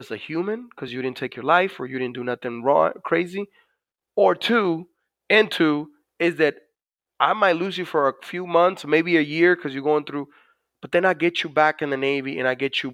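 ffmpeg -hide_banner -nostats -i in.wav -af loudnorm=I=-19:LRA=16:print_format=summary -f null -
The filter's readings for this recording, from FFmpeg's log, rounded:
Input Integrated:    -21.8 LUFS
Input True Peak:      -3.2 dBTP
Input LRA:             2.1 LU
Input Threshold:     -32.4 LUFS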